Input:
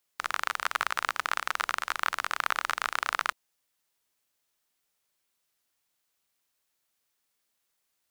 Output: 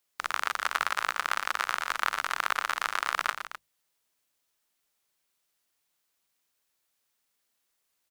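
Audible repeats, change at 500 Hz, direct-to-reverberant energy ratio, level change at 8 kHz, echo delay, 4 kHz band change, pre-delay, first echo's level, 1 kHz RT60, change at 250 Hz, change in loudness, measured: 2, +0.5 dB, no reverb audible, +0.5 dB, 118 ms, +0.5 dB, no reverb audible, −10.5 dB, no reverb audible, +0.5 dB, +0.5 dB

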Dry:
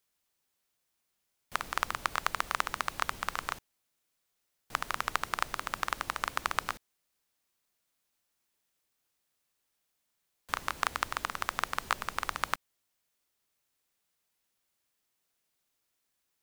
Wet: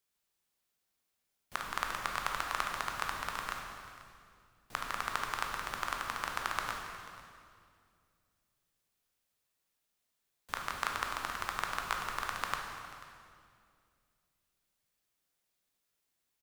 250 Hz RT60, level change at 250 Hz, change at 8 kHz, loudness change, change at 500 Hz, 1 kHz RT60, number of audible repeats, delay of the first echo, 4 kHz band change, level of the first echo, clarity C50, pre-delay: 2.8 s, −1.5 dB, −2.5 dB, −2.5 dB, −2.0 dB, 2.1 s, 1, 489 ms, −2.5 dB, −18.0 dB, 2.5 dB, 13 ms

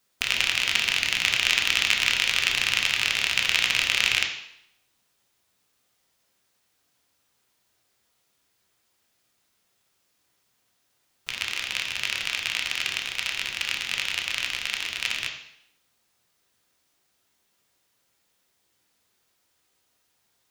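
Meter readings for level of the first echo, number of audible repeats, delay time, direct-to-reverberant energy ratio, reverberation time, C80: no echo audible, no echo audible, no echo audible, 1.0 dB, 0.70 s, 9.5 dB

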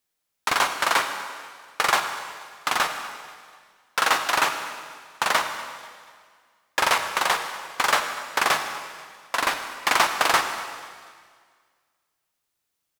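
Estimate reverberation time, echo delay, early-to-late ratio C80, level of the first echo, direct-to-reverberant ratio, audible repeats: 1.8 s, 243 ms, 8.0 dB, −20.0 dB, 6.5 dB, 3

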